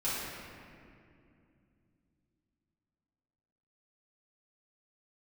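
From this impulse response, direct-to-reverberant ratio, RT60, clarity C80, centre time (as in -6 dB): -12.0 dB, 2.5 s, -0.5 dB, 0.143 s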